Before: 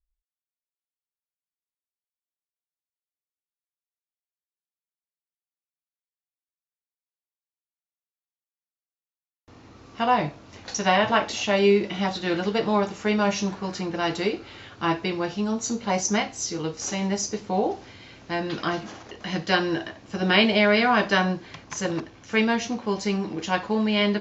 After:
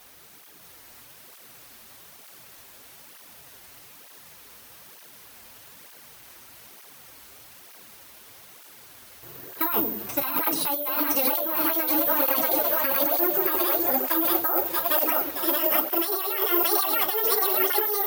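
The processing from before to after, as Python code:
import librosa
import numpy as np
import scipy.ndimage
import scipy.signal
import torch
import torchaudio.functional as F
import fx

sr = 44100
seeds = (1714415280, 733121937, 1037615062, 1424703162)

p1 = fx.speed_glide(x, sr, from_pct=70, to_pct=198)
p2 = fx.low_shelf(p1, sr, hz=220.0, db=-5.0)
p3 = fx.quant_dither(p2, sr, seeds[0], bits=6, dither='triangular')
p4 = p2 + F.gain(torch.from_numpy(p3), -11.0).numpy()
p5 = fx.high_shelf(p4, sr, hz=2600.0, db=-6.0)
p6 = fx.hum_notches(p5, sr, base_hz=50, count=7)
p7 = p6 + fx.echo_split(p6, sr, split_hz=490.0, low_ms=84, high_ms=631, feedback_pct=52, wet_db=-3.0, dry=0)
p8 = fx.over_compress(p7, sr, threshold_db=-25.0, ratio=-1.0)
p9 = (np.kron(scipy.signal.resample_poly(p8, 1, 3), np.eye(3)[0]) * 3)[:len(p8)]
y = fx.flanger_cancel(p9, sr, hz=1.1, depth_ms=7.4)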